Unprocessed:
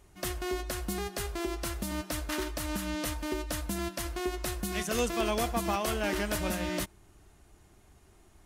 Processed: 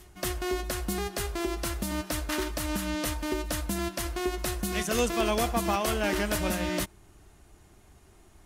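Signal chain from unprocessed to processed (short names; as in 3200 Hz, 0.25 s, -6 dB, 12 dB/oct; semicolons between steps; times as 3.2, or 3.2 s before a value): pre-echo 0.253 s -24 dB; gain +3 dB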